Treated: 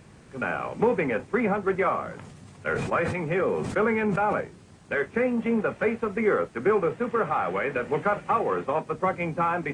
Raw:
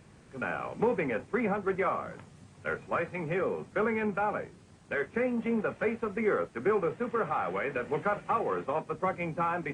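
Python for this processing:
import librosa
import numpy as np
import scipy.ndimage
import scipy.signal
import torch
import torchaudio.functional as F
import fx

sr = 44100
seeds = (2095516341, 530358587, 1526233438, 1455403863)

y = fx.sustainer(x, sr, db_per_s=35.0, at=(2.15, 4.41))
y = y * 10.0 ** (5.0 / 20.0)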